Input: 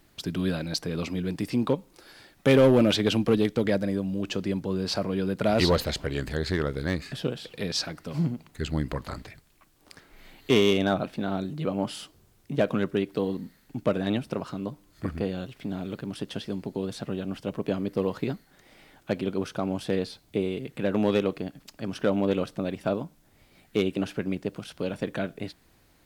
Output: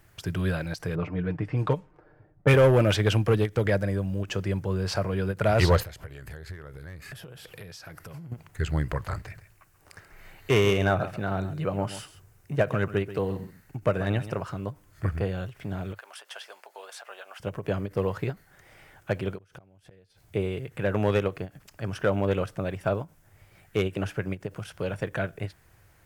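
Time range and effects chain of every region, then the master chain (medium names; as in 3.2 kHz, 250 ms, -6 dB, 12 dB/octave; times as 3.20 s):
0.95–2.54 s: level-controlled noise filter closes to 410 Hz, open at -19 dBFS + comb 6.6 ms, depth 53%
5.83–8.32 s: peaking EQ 12 kHz +11 dB 0.44 oct + compression 20:1, threshold -39 dBFS
9.17–14.33 s: band-stop 3.3 kHz + delay 135 ms -13.5 dB
15.94–17.40 s: high-pass 670 Hz 24 dB/octave + band-stop 1.9 kHz, Q 28
19.38–20.21 s: peaking EQ 1.1 kHz -5.5 dB 0.79 oct + inverted gate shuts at -23 dBFS, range -39 dB + transient shaper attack -7 dB, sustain +10 dB
whole clip: fifteen-band graphic EQ 100 Hz +10 dB, 250 Hz -12 dB, 1.6 kHz +4 dB, 4 kHz -8 dB; endings held to a fixed fall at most 340 dB/s; trim +1.5 dB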